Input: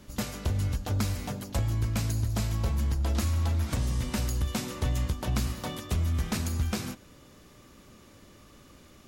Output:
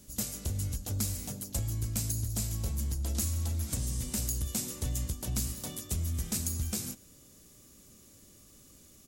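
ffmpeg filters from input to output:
ffmpeg -i in.wav -af "firequalizer=gain_entry='entry(220,0);entry(1000,-8);entry(7600,13)':delay=0.05:min_phase=1,volume=-5.5dB" out.wav

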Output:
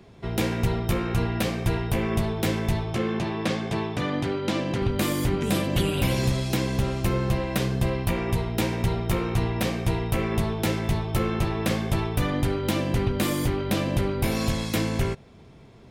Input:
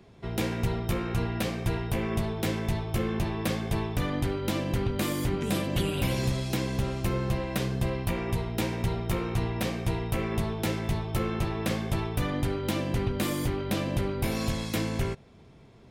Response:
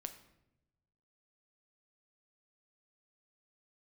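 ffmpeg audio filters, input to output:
-filter_complex "[0:a]asettb=1/sr,asplit=3[link_01][link_02][link_03];[link_01]atrim=end=2.934[link_04];[link_02]atrim=start=2.93:end=4.82,asetpts=PTS-STARTPTS,afade=type=in:duration=0.004:curve=qsin,afade=type=out:start_time=1.886:duration=0.004:curve=qsin,highpass=140,lowpass=6800[link_05];[link_03]atrim=start=4.816[link_06];[link_04][link_05]acrossfade=duration=0.004:curve1=hsin:curve2=qsin[link_07];[link_07][link_06]acrossfade=duration=0.004:curve1=qsin:curve2=hsin,volume=4dB"

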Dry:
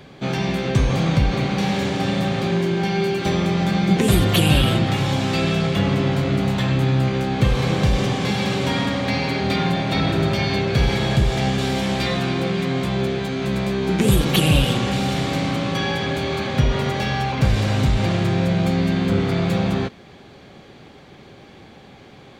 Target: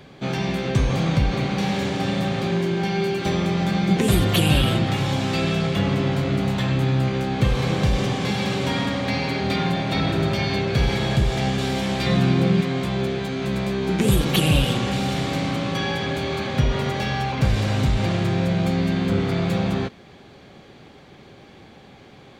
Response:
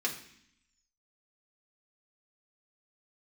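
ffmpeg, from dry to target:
-filter_complex "[0:a]asettb=1/sr,asplit=3[link_01][link_02][link_03];[link_01]atrim=end=12.064[link_04];[link_02]atrim=start=12.06:end=12.61,asetpts=PTS-STARTPTS,afade=type=in:duration=0.004:curve=qsin,afade=type=out:start_time=0.546:duration=0.004:curve=qsin,equalizer=frequency=150:width=0.67:gain=8.5[link_05];[link_03]atrim=start=12.606[link_06];[link_04][link_05]acrossfade=duration=0.004:curve1=hsin:curve2=qsin[link_07];[link_07][link_06]acrossfade=duration=0.004:curve1=qsin:curve2=hsin,volume=-2dB"

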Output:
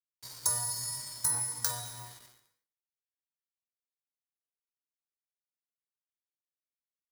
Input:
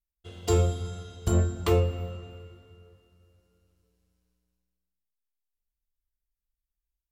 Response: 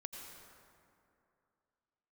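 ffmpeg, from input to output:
-filter_complex "[0:a]lowshelf=frequency=550:width_type=q:width=3:gain=-7,bandreject=frequency=60:width_type=h:width=6,bandreject=frequency=120:width_type=h:width=6,bandreject=frequency=180:width_type=h:width=6,bandreject=frequency=240:width_type=h:width=6,bandreject=frequency=300:width_type=h:width=6,bandreject=frequency=360:width_type=h:width=6,bandreject=frequency=420:width_type=h:width=6,bandreject=frequency=480:width_type=h:width=6,aexciter=amount=8.6:drive=7.1:freq=3400,acrossover=split=500|1900[link_01][link_02][link_03];[link_01]acompressor=threshold=-42dB:ratio=4[link_04];[link_02]acompressor=threshold=-38dB:ratio=4[link_05];[link_03]acompressor=threshold=-23dB:ratio=4[link_06];[link_04][link_05][link_06]amix=inputs=3:normalize=0,aeval=exprs='val(0)*gte(abs(val(0)),0.0119)':channel_layout=same,asetrate=60591,aresample=44100,atempo=0.727827,bandreject=frequency=2700:width=8.4,asplit=2[link_07][link_08];[1:a]atrim=start_sample=2205,afade=type=out:start_time=0.32:duration=0.01,atrim=end_sample=14553[link_09];[link_08][link_09]afir=irnorm=-1:irlink=0,volume=-0.5dB[link_10];[link_07][link_10]amix=inputs=2:normalize=0,volume=-8.5dB"

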